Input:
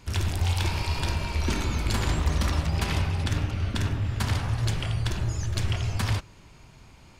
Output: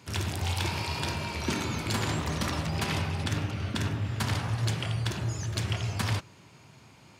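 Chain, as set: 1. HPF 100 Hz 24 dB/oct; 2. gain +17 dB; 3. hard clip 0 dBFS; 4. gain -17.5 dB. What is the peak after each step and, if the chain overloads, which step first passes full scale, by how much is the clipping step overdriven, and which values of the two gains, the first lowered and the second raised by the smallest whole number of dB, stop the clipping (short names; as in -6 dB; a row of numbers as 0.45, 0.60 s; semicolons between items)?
-13.0, +4.0, 0.0, -17.5 dBFS; step 2, 4.0 dB; step 2 +13 dB, step 4 -13.5 dB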